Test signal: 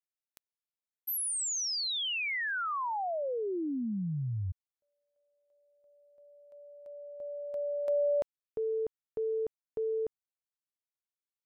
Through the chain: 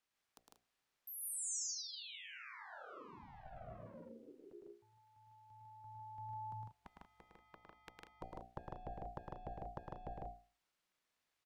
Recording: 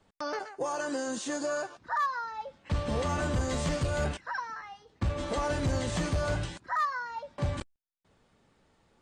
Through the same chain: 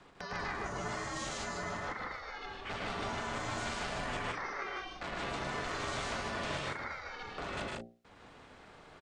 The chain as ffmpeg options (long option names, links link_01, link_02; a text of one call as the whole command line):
ffmpeg -i in.wav -filter_complex "[0:a]tiltshelf=frequency=650:gain=-4,bandreject=frequency=60:width_type=h:width=6,bandreject=frequency=120:width_type=h:width=6,bandreject=frequency=180:width_type=h:width=6,bandreject=frequency=240:width_type=h:width=6,bandreject=frequency=300:width_type=h:width=6,bandreject=frequency=360:width_type=h:width=6,bandreject=frequency=420:width_type=h:width=6,bandreject=frequency=480:width_type=h:width=6,acrossover=split=260[link_01][link_02];[link_02]acompressor=threshold=-44dB:ratio=6:attack=0.35:release=23:knee=1:detection=peak[link_03];[link_01][link_03]amix=inputs=2:normalize=0,highpass=130,afreqshift=-90,aemphasis=mode=reproduction:type=75kf,afftfilt=real='re*lt(hypot(re,im),0.0224)':imag='im*lt(hypot(re,im),0.0224)':win_size=1024:overlap=0.75,aeval=exprs='val(0)*sin(2*PI*380*n/s)':channel_layout=same,asplit=2[link_04][link_05];[link_05]aecho=0:1:107.9|151.6|186.6:0.631|0.794|0.282[link_06];[link_04][link_06]amix=inputs=2:normalize=0,volume=14dB" out.wav